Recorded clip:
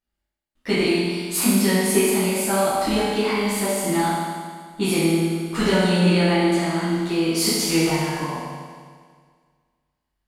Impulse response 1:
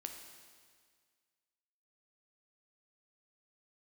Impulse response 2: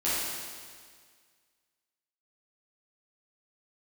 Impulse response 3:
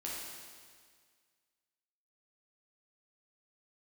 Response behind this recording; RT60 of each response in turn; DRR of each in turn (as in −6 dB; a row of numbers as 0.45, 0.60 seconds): 2; 1.8, 1.8, 1.8 seconds; 3.5, −11.5, −6.0 decibels